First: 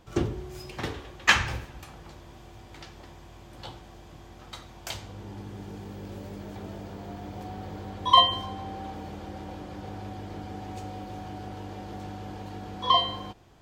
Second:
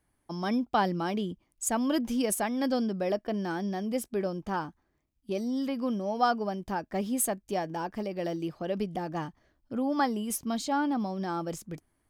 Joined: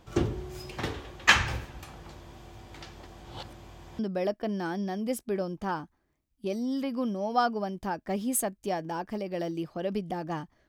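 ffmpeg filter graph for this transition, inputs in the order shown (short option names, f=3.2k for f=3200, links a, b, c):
-filter_complex "[0:a]apad=whole_dur=10.68,atrim=end=10.68,asplit=2[a][b];[a]atrim=end=3.072[c];[b]atrim=start=3.068:end=3.992,asetpts=PTS-STARTPTS,areverse[d];[1:a]atrim=start=2.838:end=9.53[e];[c][d]acrossfade=d=0.004:c1=hsin:c2=hsin[f];[f][e]acrossfade=d=0.004:c1=hsin:c2=hsin"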